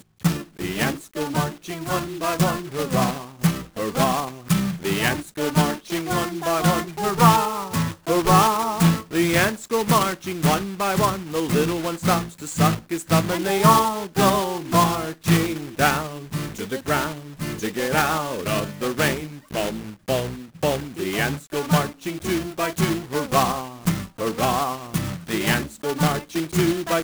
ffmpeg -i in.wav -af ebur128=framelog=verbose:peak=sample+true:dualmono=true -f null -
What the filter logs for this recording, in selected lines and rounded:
Integrated loudness:
  I:         -19.4 LUFS
  Threshold: -29.5 LUFS
Loudness range:
  LRA:         5.0 LU
  Threshold: -39.3 LUFS
  LRA low:   -21.8 LUFS
  LRA high:  -16.8 LUFS
Sample peak:
  Peak:       -3.4 dBFS
True peak:
  Peak:       -2.8 dBFS